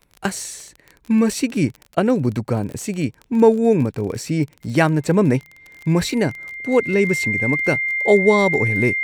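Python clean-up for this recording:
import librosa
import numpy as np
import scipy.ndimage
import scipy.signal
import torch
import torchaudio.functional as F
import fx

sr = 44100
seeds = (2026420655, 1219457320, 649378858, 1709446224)

y = fx.fix_declick_ar(x, sr, threshold=6.5)
y = fx.notch(y, sr, hz=2100.0, q=30.0)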